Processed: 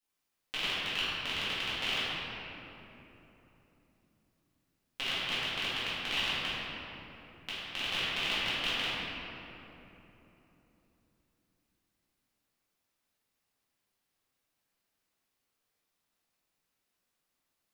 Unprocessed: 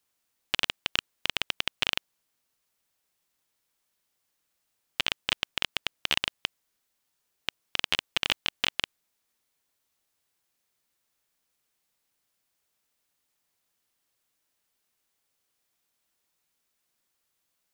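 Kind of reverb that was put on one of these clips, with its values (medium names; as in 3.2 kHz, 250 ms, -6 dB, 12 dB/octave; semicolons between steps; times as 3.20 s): simulated room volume 190 m³, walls hard, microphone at 2 m; trim -14 dB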